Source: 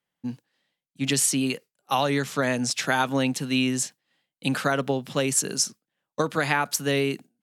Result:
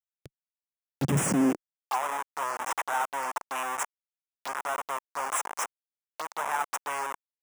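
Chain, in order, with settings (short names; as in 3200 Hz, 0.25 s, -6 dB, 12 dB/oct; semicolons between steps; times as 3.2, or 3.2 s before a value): Schmitt trigger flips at -23.5 dBFS; envelope phaser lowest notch 150 Hz, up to 4400 Hz, full sweep at -25.5 dBFS; high-pass sweep 140 Hz -> 950 Hz, 1.25–1.93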